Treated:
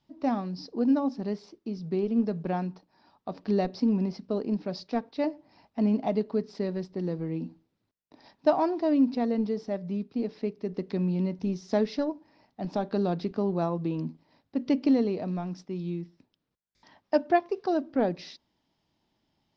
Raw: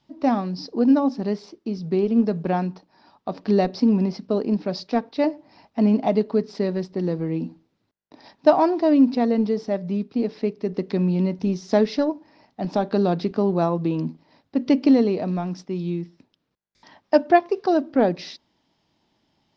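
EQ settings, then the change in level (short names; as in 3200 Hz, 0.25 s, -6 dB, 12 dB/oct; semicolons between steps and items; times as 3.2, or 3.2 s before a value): low shelf 94 Hz +6 dB; -7.5 dB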